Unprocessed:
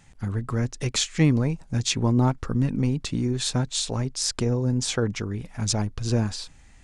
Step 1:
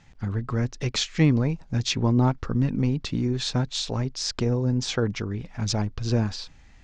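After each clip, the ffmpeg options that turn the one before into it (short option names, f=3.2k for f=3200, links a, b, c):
-af "lowpass=f=5.9k:w=0.5412,lowpass=f=5.9k:w=1.3066"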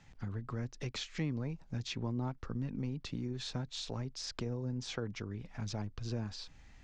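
-filter_complex "[0:a]acrossover=split=160|3600[a][b][c];[c]alimiter=level_in=2dB:limit=-24dB:level=0:latency=1:release=38,volume=-2dB[d];[a][b][d]amix=inputs=3:normalize=0,acompressor=threshold=-37dB:ratio=2,volume=-5dB"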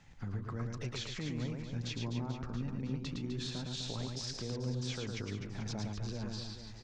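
-filter_complex "[0:a]alimiter=level_in=7.5dB:limit=-24dB:level=0:latency=1,volume=-7.5dB,asplit=2[a][b];[b]aecho=0:1:110|253|438.9|680.6|994.7:0.631|0.398|0.251|0.158|0.1[c];[a][c]amix=inputs=2:normalize=0"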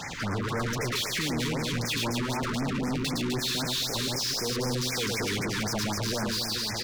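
-filter_complex "[0:a]asplit=2[a][b];[b]highpass=f=720:p=1,volume=37dB,asoftclip=type=tanh:threshold=-26dB[c];[a][c]amix=inputs=2:normalize=0,lowpass=f=7.3k:p=1,volume=-6dB,afftfilt=real='re*(1-between(b*sr/1024,620*pow(3600/620,0.5+0.5*sin(2*PI*3.9*pts/sr))/1.41,620*pow(3600/620,0.5+0.5*sin(2*PI*3.9*pts/sr))*1.41))':imag='im*(1-between(b*sr/1024,620*pow(3600/620,0.5+0.5*sin(2*PI*3.9*pts/sr))/1.41,620*pow(3600/620,0.5+0.5*sin(2*PI*3.9*pts/sr))*1.41))':win_size=1024:overlap=0.75,volume=3.5dB"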